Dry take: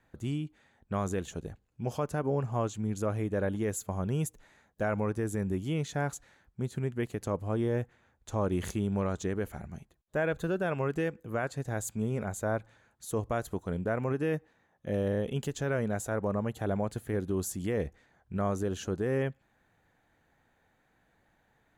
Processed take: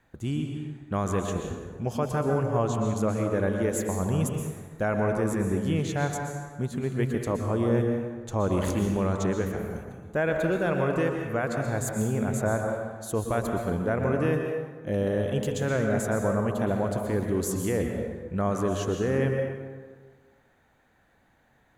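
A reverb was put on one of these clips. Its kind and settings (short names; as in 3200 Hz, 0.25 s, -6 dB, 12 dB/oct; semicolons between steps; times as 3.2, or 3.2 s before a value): plate-style reverb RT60 1.5 s, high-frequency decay 0.55×, pre-delay 0.11 s, DRR 2.5 dB; gain +3.5 dB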